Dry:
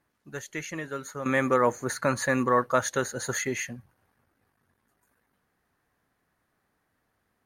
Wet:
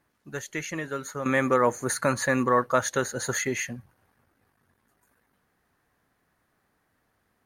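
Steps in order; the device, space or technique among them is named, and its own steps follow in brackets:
0:01.72–0:02.13: parametric band 9,900 Hz +7.5 dB 0.87 octaves
parallel compression (in parallel at −7.5 dB: downward compressor, threshold −32 dBFS, peak gain reduction 14 dB)

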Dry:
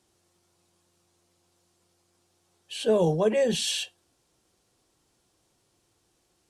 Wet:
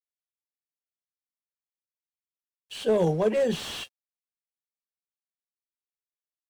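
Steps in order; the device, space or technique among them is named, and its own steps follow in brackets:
early transistor amplifier (dead-zone distortion −51.5 dBFS; slew-rate limiting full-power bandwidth 66 Hz)

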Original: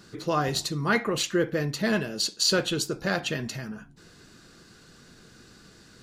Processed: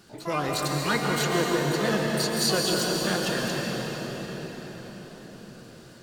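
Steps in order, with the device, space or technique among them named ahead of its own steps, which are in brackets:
shimmer-style reverb (pitch-shifted copies added +12 semitones −7 dB; convolution reverb RT60 5.8 s, pre-delay 118 ms, DRR −2 dB)
level −3.5 dB

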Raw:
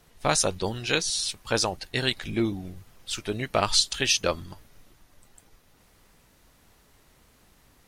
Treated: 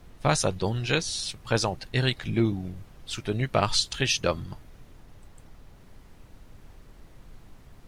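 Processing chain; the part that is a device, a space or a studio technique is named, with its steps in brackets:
car interior (parametric band 130 Hz +8 dB 0.87 octaves; high-shelf EQ 4,800 Hz −7 dB; brown noise bed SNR 18 dB)

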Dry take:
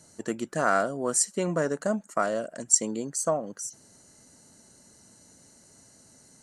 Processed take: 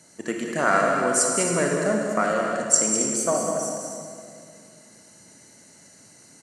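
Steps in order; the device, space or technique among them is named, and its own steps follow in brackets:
stadium PA (high-pass filter 130 Hz 12 dB per octave; parametric band 2,200 Hz +7 dB 0.76 octaves; loudspeakers that aren't time-aligned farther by 68 metres −7 dB, 93 metres −11 dB; convolution reverb RT60 2.3 s, pre-delay 28 ms, DRR 1.5 dB)
level +1.5 dB

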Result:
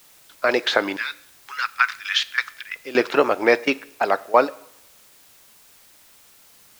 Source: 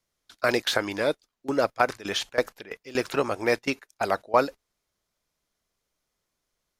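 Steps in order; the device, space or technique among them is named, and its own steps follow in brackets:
0:00.96–0:02.76: inverse Chebyshev high-pass filter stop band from 670 Hz, stop band 40 dB
dictaphone (band-pass filter 270–3,800 Hz; automatic gain control gain up to 11.5 dB; tape wow and flutter; white noise bed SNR 28 dB)
coupled-rooms reverb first 0.68 s, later 1.8 s, from −24 dB, DRR 17.5 dB

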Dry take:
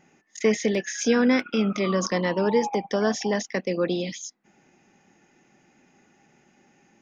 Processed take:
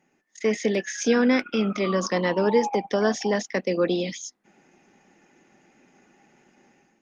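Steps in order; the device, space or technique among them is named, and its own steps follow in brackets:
video call (high-pass filter 170 Hz 12 dB per octave; automatic gain control gain up to 10 dB; level −6.5 dB; Opus 32 kbit/s 48,000 Hz)

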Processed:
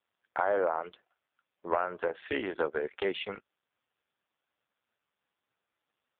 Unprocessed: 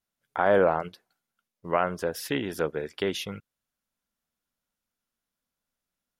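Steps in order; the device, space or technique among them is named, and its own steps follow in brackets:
voicemail (band-pass filter 420–2,900 Hz; downward compressor 8 to 1, threshold −29 dBFS, peak gain reduction 11 dB; level +5.5 dB; AMR narrowband 5.15 kbit/s 8,000 Hz)

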